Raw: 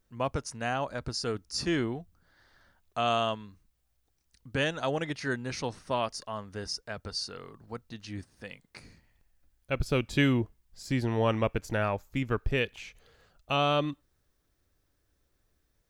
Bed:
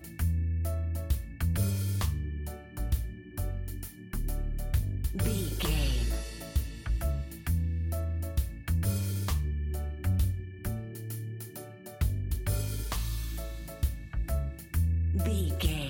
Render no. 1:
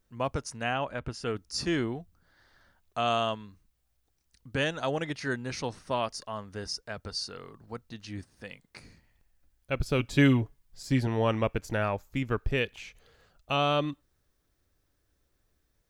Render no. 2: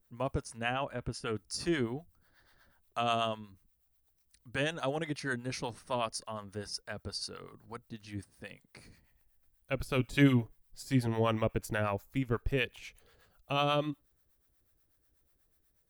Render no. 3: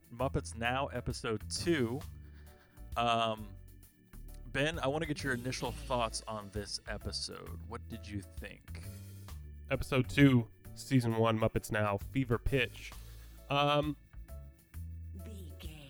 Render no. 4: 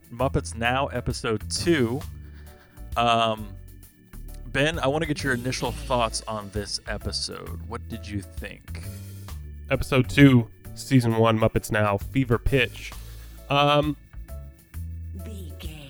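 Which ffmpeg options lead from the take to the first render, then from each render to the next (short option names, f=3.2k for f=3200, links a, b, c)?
-filter_complex "[0:a]asettb=1/sr,asplit=3[a][b][c];[a]atrim=end=0.634[d];[b]atrim=start=0.63:end=1.36,asetpts=PTS-STARTPTS,afade=t=in:d=0.004:c=qsin,afade=t=out:st=0.726:d=0.004:c=qsin,highshelf=f=3.6k:t=q:w=3:g=-6[e];[c]atrim=start=1.356[f];[d][e]acrossfade=d=0.004:c1=hsin:c2=qsin[g];[g][f]acrossfade=d=0.004:c1=qsin:c2=hsin,asettb=1/sr,asplit=3[h][i][j];[h]atrim=end=9.984[k];[i]atrim=start=9.98:end=11.07,asetpts=PTS-STARTPTS,afade=t=in:d=0.004:c=qsin,afade=t=out:st=1.086:d=0.004:c=qsin,aecho=1:1:7.2:0.57,atrim=end_sample=48069[l];[j]atrim=start=11.066[m];[k][l]acrossfade=d=0.004:c1=hsin:c2=qsin[n];[n][m]acrossfade=d=0.004:c1=qsin:c2=hsin"
-filter_complex "[0:a]acrossover=split=4800[a][b];[b]aexciter=amount=3.3:drive=2.6:freq=8.7k[c];[a][c]amix=inputs=2:normalize=0,acrossover=split=650[d][e];[d]aeval=exprs='val(0)*(1-0.7/2+0.7/2*cos(2*PI*8.2*n/s))':c=same[f];[e]aeval=exprs='val(0)*(1-0.7/2-0.7/2*cos(2*PI*8.2*n/s))':c=same[g];[f][g]amix=inputs=2:normalize=0"
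-filter_complex "[1:a]volume=-17.5dB[a];[0:a][a]amix=inputs=2:normalize=0"
-af "volume=10dB"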